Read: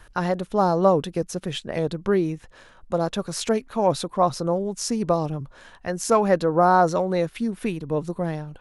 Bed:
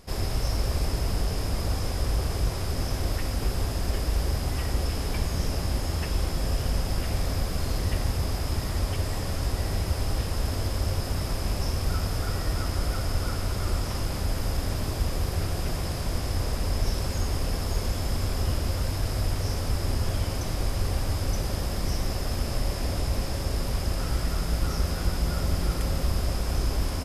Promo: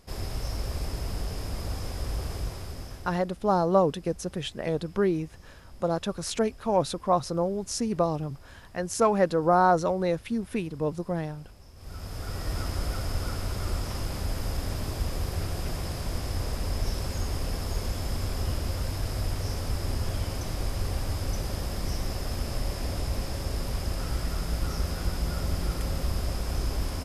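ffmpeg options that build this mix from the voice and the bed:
-filter_complex "[0:a]adelay=2900,volume=0.668[s0];[1:a]volume=5.62,afade=t=out:st=2.32:d=0.93:silence=0.125893,afade=t=in:st=11.75:d=0.83:silence=0.0944061[s1];[s0][s1]amix=inputs=2:normalize=0"

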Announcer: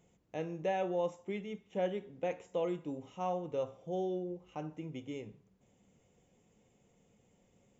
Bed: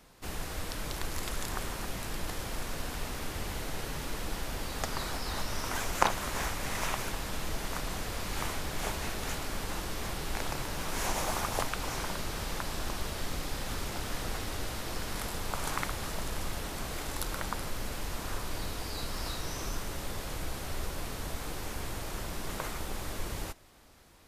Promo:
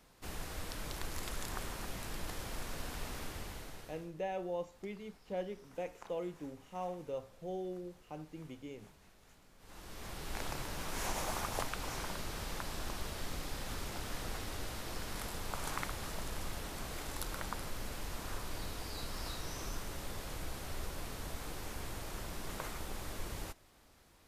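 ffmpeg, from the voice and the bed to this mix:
-filter_complex "[0:a]adelay=3550,volume=0.562[s0];[1:a]volume=7.08,afade=t=out:st=3.18:d=0.93:silence=0.0749894,afade=t=in:st=9.58:d=0.85:silence=0.0749894[s1];[s0][s1]amix=inputs=2:normalize=0"

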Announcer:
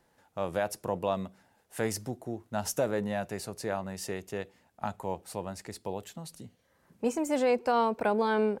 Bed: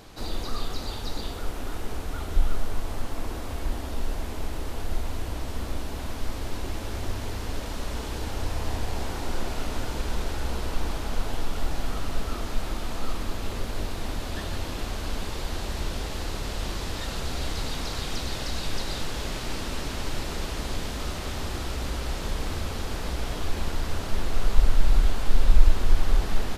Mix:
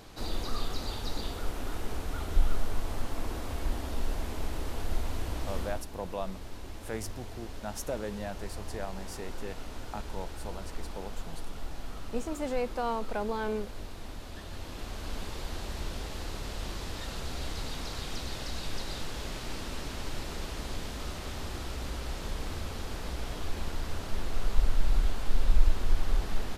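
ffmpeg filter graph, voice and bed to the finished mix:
-filter_complex "[0:a]adelay=5100,volume=0.501[s0];[1:a]volume=1.33,afade=t=out:st=5.58:d=0.28:silence=0.375837,afade=t=in:st=14.44:d=0.75:silence=0.562341[s1];[s0][s1]amix=inputs=2:normalize=0"

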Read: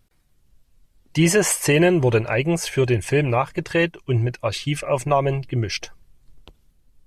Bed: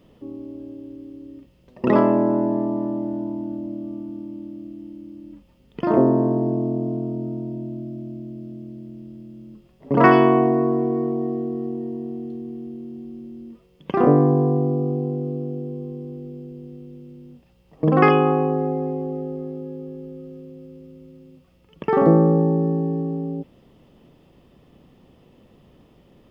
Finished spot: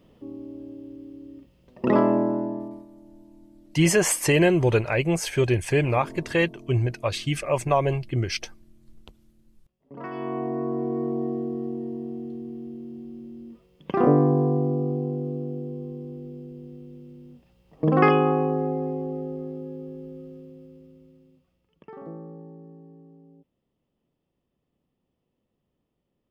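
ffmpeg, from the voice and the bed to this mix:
-filter_complex "[0:a]adelay=2600,volume=0.75[s0];[1:a]volume=7.5,afade=t=out:st=2.15:d=0.71:silence=0.0944061,afade=t=in:st=10.1:d=1.08:silence=0.0944061,afade=t=out:st=20.19:d=1.76:silence=0.0794328[s1];[s0][s1]amix=inputs=2:normalize=0"

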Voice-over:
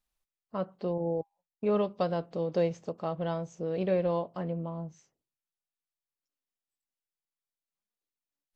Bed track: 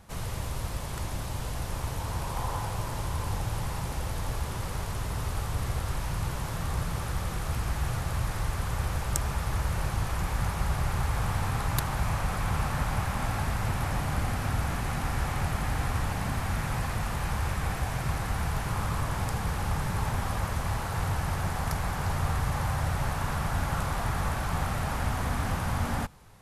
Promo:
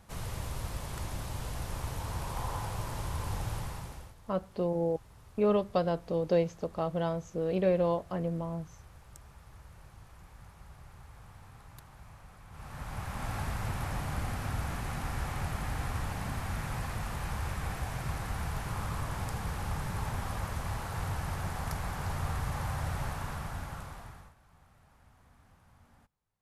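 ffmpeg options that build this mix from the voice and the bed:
-filter_complex "[0:a]adelay=3750,volume=1.12[s0];[1:a]volume=5.01,afade=t=out:st=3.51:d=0.64:silence=0.105925,afade=t=in:st=12.5:d=0.87:silence=0.125893,afade=t=out:st=22.99:d=1.35:silence=0.0446684[s1];[s0][s1]amix=inputs=2:normalize=0"

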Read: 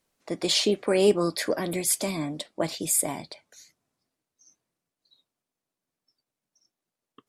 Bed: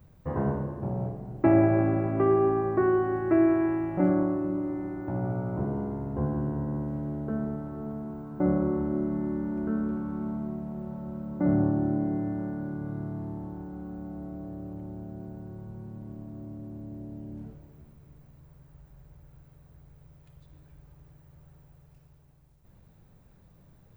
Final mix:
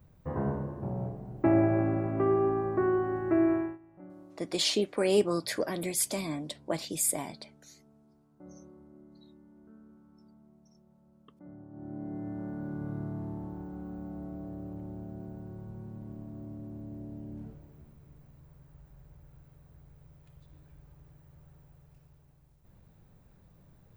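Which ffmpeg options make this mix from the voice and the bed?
-filter_complex "[0:a]adelay=4100,volume=0.596[s0];[1:a]volume=10.6,afade=t=out:st=3.55:d=0.23:silence=0.0749894,afade=t=in:st=11.69:d=1.14:silence=0.0630957[s1];[s0][s1]amix=inputs=2:normalize=0"

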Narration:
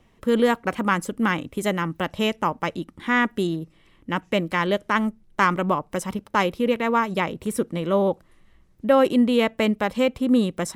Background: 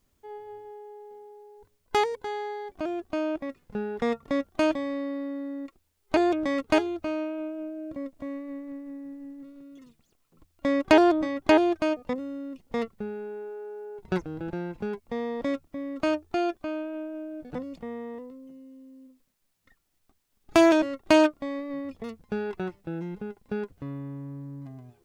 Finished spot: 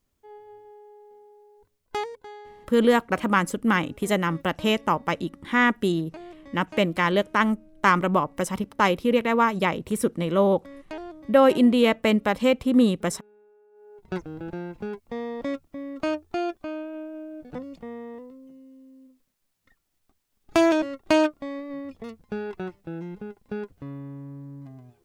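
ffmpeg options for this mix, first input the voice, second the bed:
-filter_complex "[0:a]adelay=2450,volume=1.06[s0];[1:a]volume=5.01,afade=t=out:st=1.83:d=0.93:silence=0.177828,afade=t=in:st=13.71:d=0.57:silence=0.11885[s1];[s0][s1]amix=inputs=2:normalize=0"

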